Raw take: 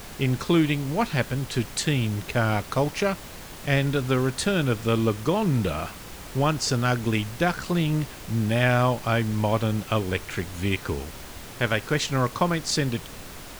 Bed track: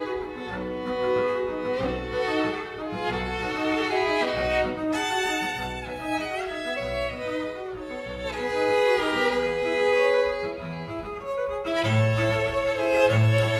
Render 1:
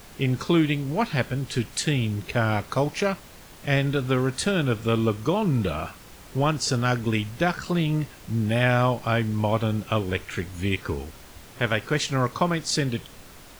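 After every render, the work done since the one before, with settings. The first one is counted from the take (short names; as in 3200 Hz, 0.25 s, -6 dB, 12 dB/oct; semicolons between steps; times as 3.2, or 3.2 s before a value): noise print and reduce 6 dB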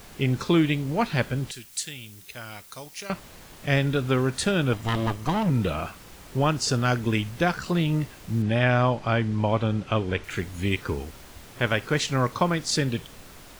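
1.51–3.1 pre-emphasis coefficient 0.9; 4.73–5.5 minimum comb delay 1 ms; 8.42–10.24 air absorption 76 m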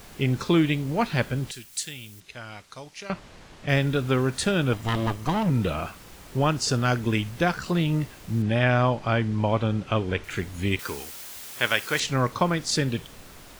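2.2–3.69 air absorption 74 m; 10.79–12 tilt +3.5 dB/oct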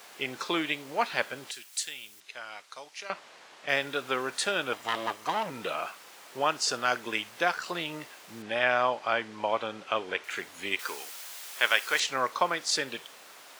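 HPF 610 Hz 12 dB/oct; high shelf 8300 Hz -4.5 dB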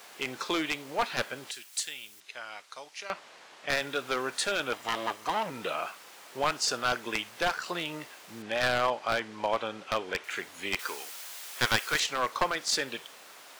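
one-sided fold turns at -20.5 dBFS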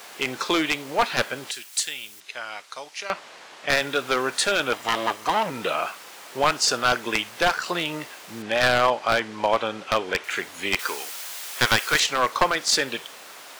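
gain +7.5 dB; limiter -1 dBFS, peak gain reduction 2.5 dB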